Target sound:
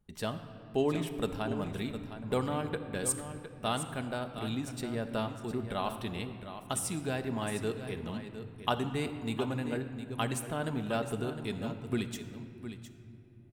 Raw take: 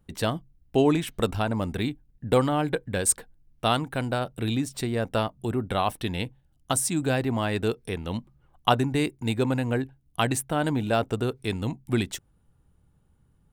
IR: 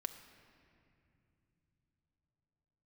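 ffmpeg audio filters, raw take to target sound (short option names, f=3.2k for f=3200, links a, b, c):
-filter_complex "[0:a]aecho=1:1:710:0.282[a];[1:a]atrim=start_sample=2205[b];[a][b]afir=irnorm=-1:irlink=0,volume=-6.5dB"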